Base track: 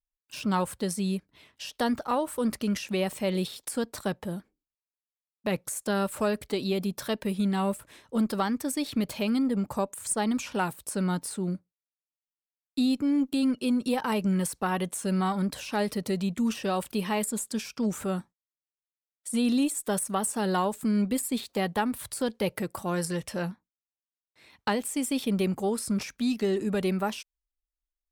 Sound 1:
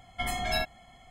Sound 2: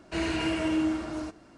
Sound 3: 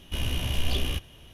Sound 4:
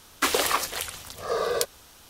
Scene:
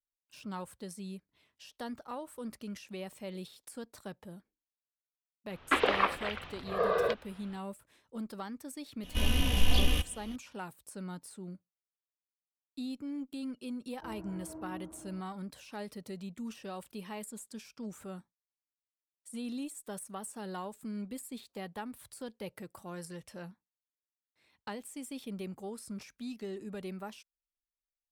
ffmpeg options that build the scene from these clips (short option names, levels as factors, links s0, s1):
-filter_complex "[0:a]volume=0.2[s0];[4:a]lowpass=f=3000:w=0.5412,lowpass=f=3000:w=1.3066[s1];[3:a]aecho=1:1:4:0.68[s2];[2:a]lowpass=f=1100:w=0.5412,lowpass=f=1100:w=1.3066[s3];[s1]atrim=end=2.09,asetpts=PTS-STARTPTS,volume=0.794,afade=t=in:d=0.004:c=hsin,afade=t=out:st=2.086:d=0.004:c=hsin,adelay=242109S[s4];[s2]atrim=end=1.33,asetpts=PTS-STARTPTS,volume=0.891,afade=t=in:d=0.004:c=hsin,afade=t=out:st=1.326:d=0.004:c=hsin,adelay=9030[s5];[s3]atrim=end=1.57,asetpts=PTS-STARTPTS,volume=0.133,afade=t=in:d=0.004:c=hsin,afade=t=out:st=1.566:d=0.004:c=hsin,adelay=13900[s6];[s0][s4][s5][s6]amix=inputs=4:normalize=0"